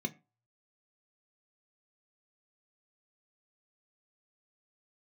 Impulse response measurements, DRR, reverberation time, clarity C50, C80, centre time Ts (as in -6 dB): 5.5 dB, 0.30 s, 21.0 dB, 25.5 dB, 7 ms